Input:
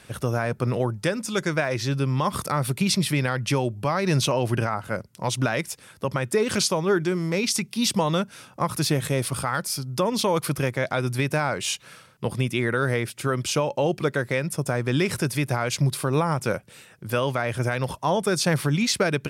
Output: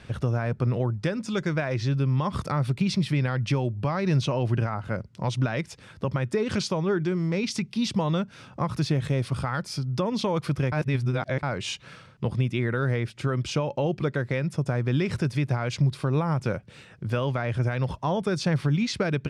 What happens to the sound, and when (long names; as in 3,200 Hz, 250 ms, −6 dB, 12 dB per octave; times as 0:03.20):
0:10.72–0:11.43: reverse
whole clip: low-pass filter 4,900 Hz 12 dB per octave; low-shelf EQ 190 Hz +11 dB; downward compressor 1.5 to 1, threshold −32 dBFS